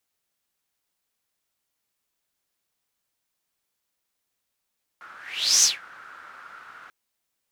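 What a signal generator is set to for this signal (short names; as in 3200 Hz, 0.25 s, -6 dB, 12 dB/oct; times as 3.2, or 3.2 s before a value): whoosh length 1.89 s, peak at 0.62, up 0.50 s, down 0.19 s, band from 1400 Hz, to 6200 Hz, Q 6.9, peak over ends 28 dB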